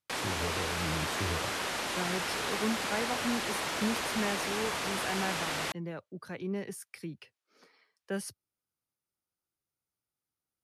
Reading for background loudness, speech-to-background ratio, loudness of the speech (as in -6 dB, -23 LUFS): -33.0 LUFS, -5.0 dB, -38.0 LUFS